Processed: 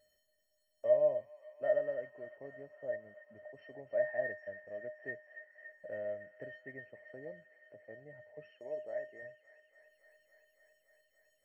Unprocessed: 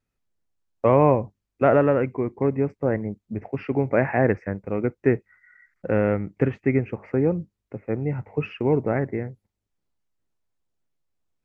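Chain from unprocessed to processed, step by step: 8.59–9.23 s: tone controls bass -11 dB, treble +12 dB; in parallel at -1 dB: upward compressor, threshold -20 dBFS; on the sum: feedback comb 620 Hz, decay 0.25 s, harmonics odd, mix 100%; feedback echo behind a high-pass 282 ms, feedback 83%, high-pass 1.5 kHz, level -10.5 dB; trim -1.5 dB

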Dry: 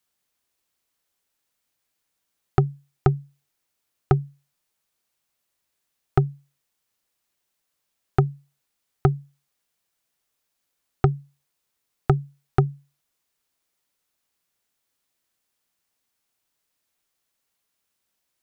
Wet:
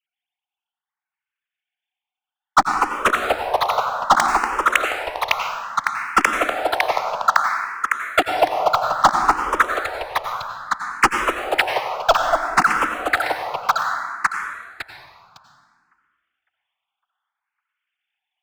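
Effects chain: formants replaced by sine waves; high-pass 680 Hz 24 dB/octave; treble shelf 2 kHz +10.5 dB; two-band feedback delay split 1.1 kHz, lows 240 ms, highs 556 ms, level -6 dB; waveshaping leveller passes 5; gain riding within 4 dB 0.5 s; plate-style reverb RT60 1.7 s, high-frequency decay 0.6×, pre-delay 75 ms, DRR 3.5 dB; barber-pole phaser +0.61 Hz; trim +4 dB

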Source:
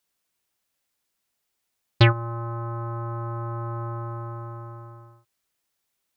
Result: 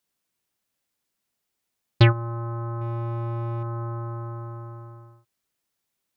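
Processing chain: peaking EQ 190 Hz +5 dB 2.2 oct; 2.81–3.63 s: waveshaping leveller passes 1; trim -2.5 dB

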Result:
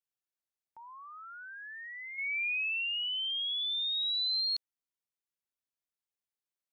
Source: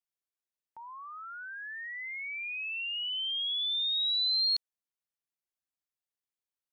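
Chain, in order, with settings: 2.18–4.41 s: peaking EQ 2.4 kHz +9 dB 0.57 oct; trim -4 dB

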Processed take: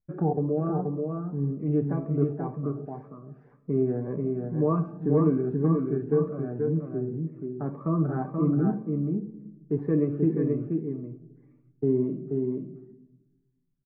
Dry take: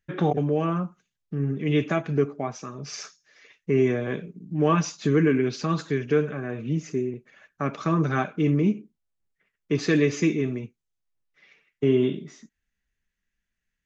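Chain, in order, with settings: low-pass 1.1 kHz 24 dB/octave; on a send: delay 481 ms -4 dB; on the sum: simulated room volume 490 m³, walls mixed, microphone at 0.39 m; Shepard-style phaser rising 1.9 Hz; trim -3 dB

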